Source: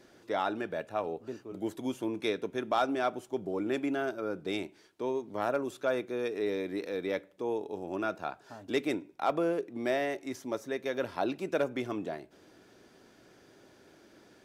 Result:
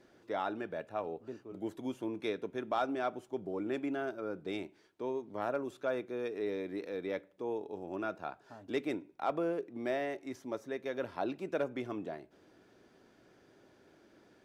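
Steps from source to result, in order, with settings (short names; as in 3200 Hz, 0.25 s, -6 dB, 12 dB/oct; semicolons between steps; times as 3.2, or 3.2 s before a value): high shelf 3900 Hz -7.5 dB; gain -4 dB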